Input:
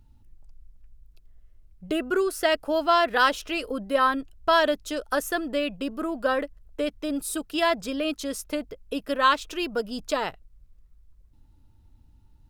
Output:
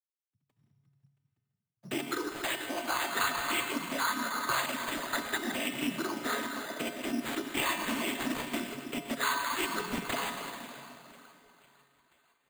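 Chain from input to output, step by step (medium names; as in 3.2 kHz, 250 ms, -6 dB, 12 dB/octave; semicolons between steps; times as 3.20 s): crossover distortion -43 dBFS; on a send at -8.5 dB: reverberation RT60 2.6 s, pre-delay 77 ms; on the sum: compression 3:1, threshold -29 dBFS, peak gain reduction 10.5 dB; 7.46–8.72 s: doubling 26 ms -6.5 dB; thinning echo 505 ms, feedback 56%, high-pass 250 Hz, level -22 dB; noise-vocoded speech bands 16; in parallel at 0 dB: peak limiter -23.5 dBFS, peak gain reduction 9 dB; on the sum: level rider gain up to 11.5 dB; peaking EQ 520 Hz -14 dB 1.4 oct; careless resampling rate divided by 8×, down none, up hold; feedback comb 140 Hz, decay 1.1 s, harmonics odd, mix 80%; trim +2 dB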